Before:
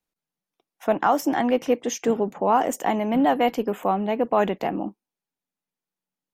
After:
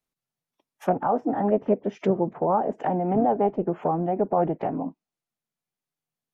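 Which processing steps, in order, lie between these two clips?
treble ducked by the level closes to 790 Hz, closed at -20 dBFS; formant-preserving pitch shift -3 st

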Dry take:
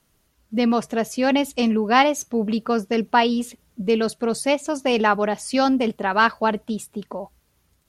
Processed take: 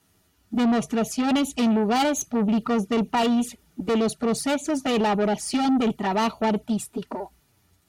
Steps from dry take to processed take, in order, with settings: envelope flanger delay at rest 11.2 ms, full sweep at -19 dBFS; tube stage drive 24 dB, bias 0.2; notch comb 530 Hz; gain +6.5 dB

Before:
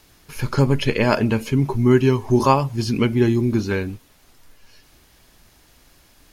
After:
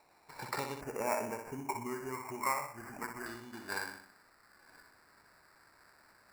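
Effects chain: compressor 6:1, threshold -22 dBFS, peak gain reduction 12.5 dB; flutter echo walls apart 10.5 m, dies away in 0.58 s; band-pass sweep 860 Hz -> 1800 Hz, 1.69–3.15; sample-rate reducer 3200 Hz, jitter 0%; 0.81–3.26 Butterworth band-stop 3700 Hz, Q 1.1

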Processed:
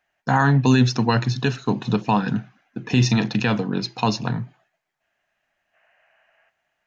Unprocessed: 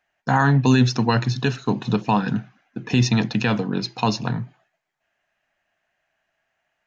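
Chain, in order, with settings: 2.92–3.4 doubler 39 ms -11 dB; 5.74–6.49 spectral gain 440–3100 Hz +12 dB

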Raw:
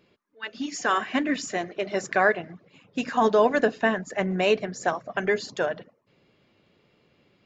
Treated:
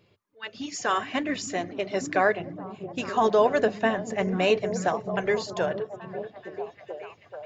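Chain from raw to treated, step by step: fifteen-band EQ 100 Hz +11 dB, 250 Hz -6 dB, 1600 Hz -4 dB; on a send: delay with a stepping band-pass 0.433 s, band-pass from 160 Hz, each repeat 0.7 oct, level -3 dB

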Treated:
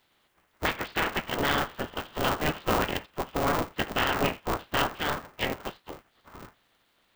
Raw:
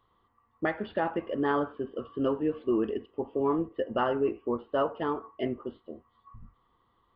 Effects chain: spectral limiter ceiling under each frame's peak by 29 dB; polarity switched at an audio rate 150 Hz; gain +1.5 dB

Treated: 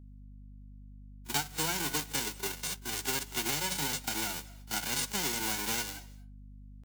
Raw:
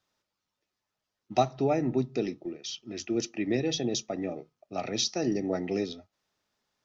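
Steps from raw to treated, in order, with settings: spectral whitening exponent 0.1; gate -44 dBFS, range -19 dB; pitch shift +2.5 st; compressor 4:1, threshold -34 dBFS, peak gain reduction 13 dB; hum 50 Hz, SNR 14 dB; pre-echo 36 ms -19.5 dB; on a send at -20.5 dB: reverb RT60 0.35 s, pre-delay 0.174 s; on the sum: gain +3.5 dB

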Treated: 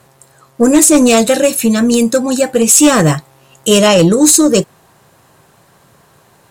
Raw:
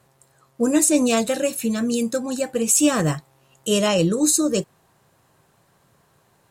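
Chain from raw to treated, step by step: low shelf 140 Hz -3 dB; in parallel at -5.5 dB: sine folder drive 9 dB, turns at -4 dBFS; on the sum: gain +2 dB

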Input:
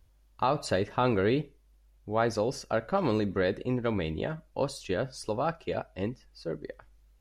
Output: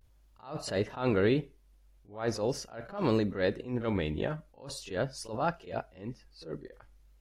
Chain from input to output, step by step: vibrato 0.42 Hz 54 cents; pre-echo 36 ms -17.5 dB; attack slew limiter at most 140 dB/s

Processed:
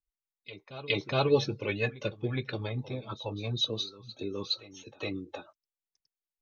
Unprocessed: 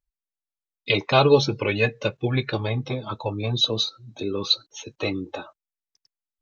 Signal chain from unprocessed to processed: rotary speaker horn 6.3 Hz; reverse echo 0.416 s -16 dB; gain -7 dB

